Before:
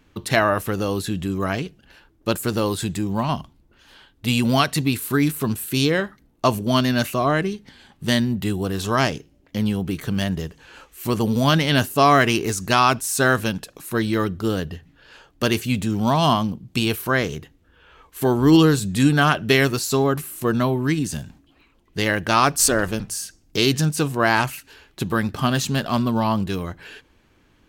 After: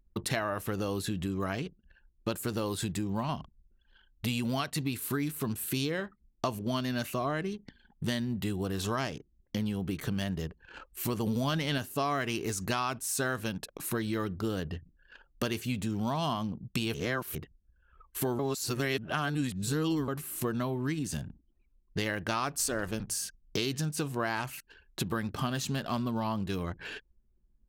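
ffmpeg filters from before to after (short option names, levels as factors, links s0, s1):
-filter_complex "[0:a]asettb=1/sr,asplit=3[s0][s1][s2];[s0]atrim=end=11.264[s3];[s1]atrim=start=11.26:end=11.78,asetpts=PTS-STARTPTS,afade=t=in:d=0.004:c=qsin,afade=t=out:st=0.516:d=0.004:c=qsin,acontrast=29[s4];[s2]atrim=start=11.776[s5];[s3][s4]acrossfade=d=0.004:c1=hsin:c2=qsin[s6];[s6][s5]acrossfade=d=0.004:c1=qsin:c2=hsin,asplit=5[s7][s8][s9][s10][s11];[s7]atrim=end=16.942[s12];[s8]atrim=start=16.938:end=17.352,asetpts=PTS-STARTPTS,areverse[s13];[s9]atrim=start=17.348:end=18.392[s14];[s10]atrim=start=18.388:end=20.082,asetpts=PTS-STARTPTS,areverse[s15];[s11]atrim=start=20.078[s16];[s12][s13]acrossfade=d=0.004:c1=hsin:c2=hsin[s17];[s17][s14]acrossfade=d=0.004:c1=hsin:c2=hsin[s18];[s18][s15]acrossfade=d=0.004:c1=hsin:c2=hsin[s19];[s19][s16]acrossfade=d=0.004:c1=hsin:c2=hsin,anlmdn=0.158,acompressor=threshold=0.0282:ratio=4"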